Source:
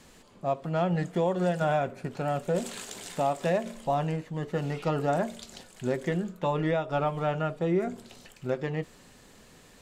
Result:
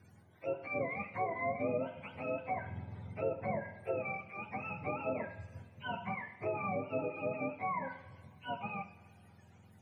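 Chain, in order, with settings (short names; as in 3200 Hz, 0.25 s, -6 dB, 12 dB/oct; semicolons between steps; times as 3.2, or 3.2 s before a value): spectrum mirrored in octaves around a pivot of 610 Hz; two-slope reverb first 0.74 s, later 3.1 s, from -18 dB, DRR 9 dB; treble ducked by the level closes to 1700 Hz, closed at -23.5 dBFS; gain -7.5 dB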